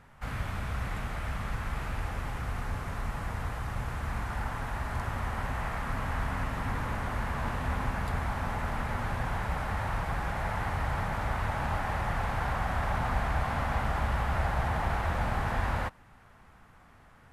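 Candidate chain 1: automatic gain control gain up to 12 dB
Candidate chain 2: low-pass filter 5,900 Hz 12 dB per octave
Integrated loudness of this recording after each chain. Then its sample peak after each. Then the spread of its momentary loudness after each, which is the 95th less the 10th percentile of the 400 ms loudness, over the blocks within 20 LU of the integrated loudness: −21.0, −33.0 LKFS; −4.0, −15.0 dBFS; 5, 6 LU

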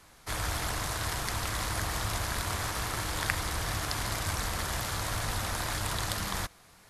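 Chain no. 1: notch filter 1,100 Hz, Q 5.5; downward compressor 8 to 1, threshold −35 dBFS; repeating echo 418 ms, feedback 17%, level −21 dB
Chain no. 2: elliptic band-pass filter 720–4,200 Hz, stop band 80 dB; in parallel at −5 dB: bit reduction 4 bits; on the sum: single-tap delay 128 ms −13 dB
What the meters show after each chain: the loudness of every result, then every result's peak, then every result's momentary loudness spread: −38.5, −35.0 LKFS; −18.5, −6.0 dBFS; 1, 3 LU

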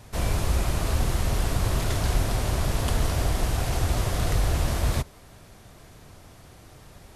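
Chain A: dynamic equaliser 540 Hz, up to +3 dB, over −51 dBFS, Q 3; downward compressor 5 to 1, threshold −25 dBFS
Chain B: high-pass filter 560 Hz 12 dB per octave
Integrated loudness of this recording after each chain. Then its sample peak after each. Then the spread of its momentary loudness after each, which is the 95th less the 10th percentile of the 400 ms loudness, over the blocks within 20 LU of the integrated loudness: −31.5, −33.0 LKFS; −16.0, −14.0 dBFS; 19, 1 LU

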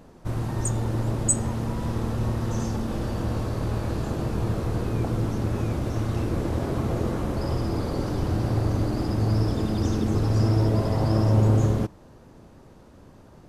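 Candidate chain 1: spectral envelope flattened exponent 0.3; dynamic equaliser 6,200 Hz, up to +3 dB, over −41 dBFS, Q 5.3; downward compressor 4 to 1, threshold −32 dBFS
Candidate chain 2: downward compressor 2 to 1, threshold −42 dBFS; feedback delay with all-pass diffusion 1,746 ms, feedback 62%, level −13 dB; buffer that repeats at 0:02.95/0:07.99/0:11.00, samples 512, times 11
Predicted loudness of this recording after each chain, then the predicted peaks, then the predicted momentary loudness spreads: −32.0, −37.0 LKFS; −18.0, −21.5 dBFS; 5, 8 LU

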